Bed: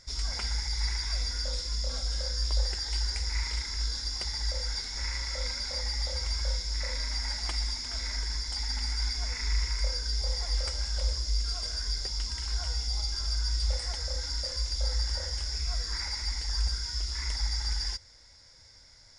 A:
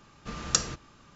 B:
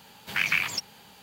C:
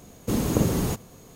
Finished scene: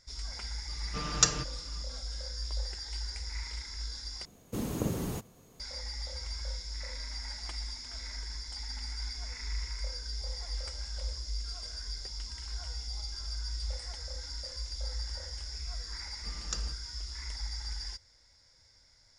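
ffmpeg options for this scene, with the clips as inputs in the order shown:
-filter_complex "[1:a]asplit=2[a][b];[0:a]volume=-7.5dB[c];[a]aecho=1:1:6.7:0.69[d];[c]asplit=2[e][f];[e]atrim=end=4.254[g];[3:a]atrim=end=1.35,asetpts=PTS-STARTPTS,volume=-10dB[h];[f]atrim=start=5.596[i];[d]atrim=end=1.15,asetpts=PTS-STARTPTS,volume=-1dB,afade=t=in:d=0.004:c=hsin,afade=t=out:st=1.146:d=0.004:c=hsin,adelay=680[j];[b]atrim=end=1.15,asetpts=PTS-STARTPTS,volume=-13.5dB,afade=t=in:d=0.004:c=hsin,afade=t=out:st=1.146:d=0.004:c=hsin,adelay=15980[k];[g][h]acrossfade=d=0.004:c1=hsin:c2=hsin[l];[l][i]acrossfade=d=0.004:c1=hsin:c2=hsin[m];[m][j][k]amix=inputs=3:normalize=0"

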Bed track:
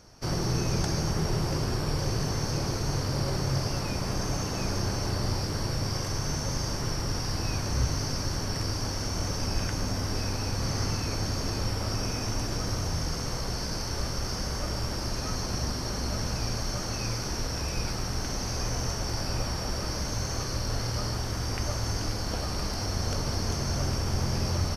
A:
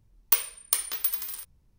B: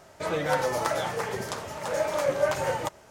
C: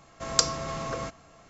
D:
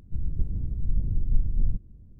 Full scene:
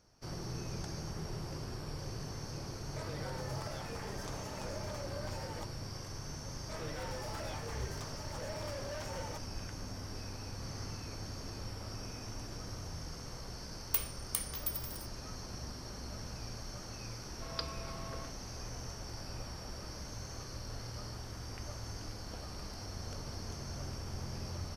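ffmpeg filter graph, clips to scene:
-filter_complex "[2:a]asplit=2[a][b];[0:a]volume=-13.5dB[c];[a]acompressor=threshold=-33dB:ratio=6:attack=3.2:release=140:knee=1:detection=peak[d];[b]asoftclip=type=tanh:threshold=-29dB[e];[3:a]aresample=11025,aresample=44100[f];[d]atrim=end=3.1,asetpts=PTS-STARTPTS,volume=-9dB,afade=t=in:d=0.004:c=hsin,afade=t=out:st=3.096:d=0.004:c=hsin,adelay=2760[g];[e]atrim=end=3.1,asetpts=PTS-STARTPTS,volume=-11.5dB,afade=t=in:d=0.004:c=hsin,afade=t=out:st=3.096:d=0.004:c=hsin,adelay=6490[h];[1:a]atrim=end=1.78,asetpts=PTS-STARTPTS,volume=-10.5dB,afade=t=in:d=0.004:c=hsin,afade=t=out:st=1.776:d=0.004:c=hsin,adelay=13620[i];[f]atrim=end=1.49,asetpts=PTS-STARTPTS,volume=-13.5dB,afade=t=in:d=0.004:c=hsin,afade=t=out:st=1.486:d=0.004:c=hsin,adelay=17200[j];[c][g][h][i][j]amix=inputs=5:normalize=0"

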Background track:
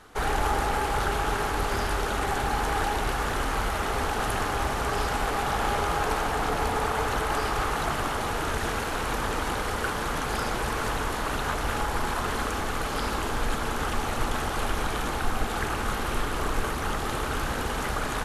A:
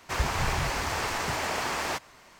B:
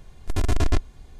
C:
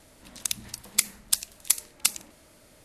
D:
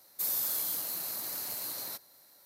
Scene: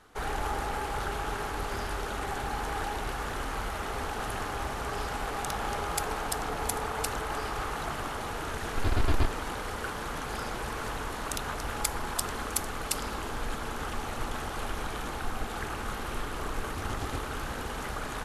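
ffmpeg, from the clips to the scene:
-filter_complex "[3:a]asplit=2[a][b];[2:a]asplit=2[c][d];[0:a]volume=-6.5dB[e];[c]aresample=11025,aresample=44100[f];[d]highpass=54[g];[a]atrim=end=2.84,asetpts=PTS-STARTPTS,volume=-11.5dB,afade=t=in:d=0.004:c=hsin,afade=t=out:st=2.836:d=0.004:c=hsin,adelay=4990[h];[f]atrim=end=1.19,asetpts=PTS-STARTPTS,volume=-5dB,afade=t=in:d=0.004:c=hsin,afade=t=out:st=1.186:d=0.004:c=hsin,adelay=8480[i];[b]atrim=end=2.84,asetpts=PTS-STARTPTS,volume=-8.5dB,afade=t=in:d=0.004:c=hsin,afade=t=out:st=2.836:d=0.004:c=hsin,adelay=10860[j];[g]atrim=end=1.19,asetpts=PTS-STARTPTS,volume=-13dB,afade=t=in:d=0.004:c=hsin,afade=t=out:st=1.186:d=0.004:c=hsin,adelay=16410[k];[e][h][i][j][k]amix=inputs=5:normalize=0"

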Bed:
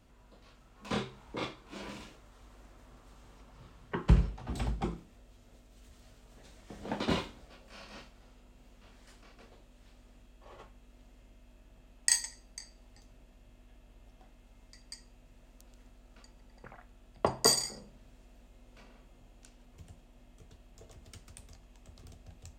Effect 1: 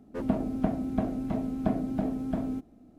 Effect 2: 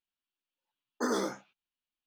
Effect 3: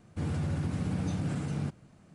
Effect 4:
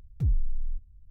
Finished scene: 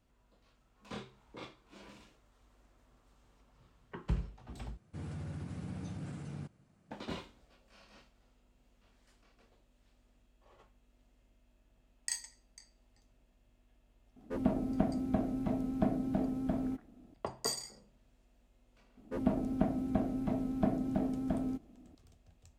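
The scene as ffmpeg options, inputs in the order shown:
-filter_complex "[1:a]asplit=2[a][b];[0:a]volume=-10.5dB,asplit=2[c][d];[c]atrim=end=4.774[e];[3:a]atrim=end=2.14,asetpts=PTS-STARTPTS,volume=-10.5dB[f];[d]atrim=start=6.906[g];[a]atrim=end=2.98,asetpts=PTS-STARTPTS,volume=-3.5dB,afade=t=in:d=0.004:c=hsin,afade=t=out:st=2.976:d=0.004:c=hsin,adelay=14160[h];[b]atrim=end=2.98,asetpts=PTS-STARTPTS,volume=-3.5dB,afade=t=in:d=0.004:c=hsin,afade=t=out:st=2.976:d=0.004:c=hsin,adelay=18970[i];[e][f]acrossfade=d=0.004:c1=hsin:c2=hsin[j];[j][g]acrossfade=d=0.004:c1=hsin:c2=hsin[k];[k][h][i]amix=inputs=3:normalize=0"

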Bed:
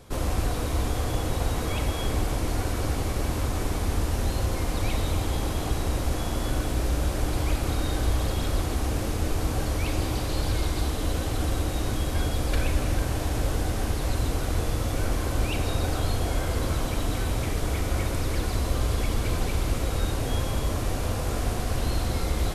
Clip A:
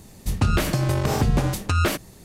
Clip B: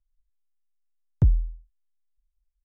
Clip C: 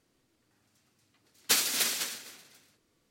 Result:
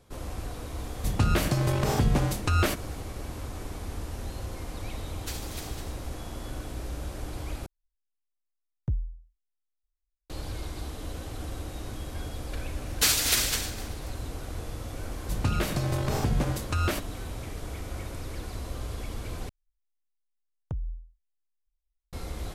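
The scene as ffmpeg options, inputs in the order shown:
-filter_complex "[1:a]asplit=2[a][b];[3:a]asplit=2[c][d];[2:a]asplit=2[e][f];[0:a]volume=-10dB[g];[d]alimiter=level_in=15dB:limit=-1dB:release=50:level=0:latency=1[h];[f]acompressor=threshold=-23dB:ratio=6:attack=3.2:release=140:knee=1:detection=peak[i];[g]asplit=3[j][k][l];[j]atrim=end=7.664[m];[e]atrim=end=2.64,asetpts=PTS-STARTPTS,volume=-10dB[n];[k]atrim=start=10.296:end=19.494[o];[i]atrim=end=2.64,asetpts=PTS-STARTPTS,volume=-6.5dB[p];[l]atrim=start=22.126[q];[a]atrim=end=2.24,asetpts=PTS-STARTPTS,volume=-3.5dB,afade=t=in:d=0.004:c=hsin,afade=t=out:st=2.236:d=0.004:c=hsin,adelay=780[r];[c]atrim=end=3.1,asetpts=PTS-STARTPTS,volume=-14dB,afade=t=in:d=0.004:c=hsin,afade=t=out:st=3.096:d=0.004:c=hsin,adelay=166257S[s];[h]atrim=end=3.1,asetpts=PTS-STARTPTS,volume=-10.5dB,afade=t=in:d=0.004:c=hsin,afade=t=out:st=3.096:d=0.004:c=hsin,adelay=11520[t];[b]atrim=end=2.24,asetpts=PTS-STARTPTS,volume=-6.5dB,afade=t=in:d=0.004:c=hsin,afade=t=out:st=2.236:d=0.004:c=hsin,adelay=15030[u];[m][n]acrossfade=d=0.004:c1=hsin:c2=hsin[v];[v][o]acrossfade=d=0.004:c1=hsin:c2=hsin[w];[w][p]acrossfade=d=0.004:c1=hsin:c2=hsin[x];[x][q]acrossfade=d=0.004:c1=hsin:c2=hsin[y];[y][r][s][t][u]amix=inputs=5:normalize=0"

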